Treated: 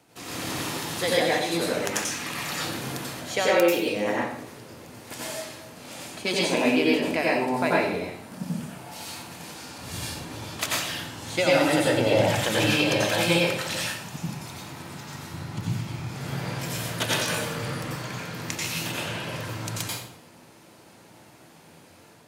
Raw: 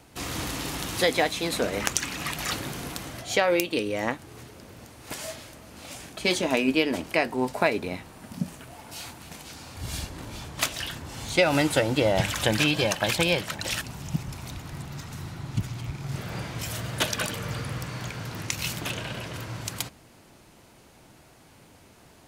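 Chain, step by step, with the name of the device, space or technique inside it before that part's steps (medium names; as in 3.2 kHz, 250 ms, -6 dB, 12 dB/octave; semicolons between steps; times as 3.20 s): far laptop microphone (reverberation RT60 0.70 s, pre-delay 84 ms, DRR -5 dB; high-pass 140 Hz 12 dB/octave; level rider gain up to 3 dB); 13.86–15.34 s: bass shelf 150 Hz -8 dB; trim -6 dB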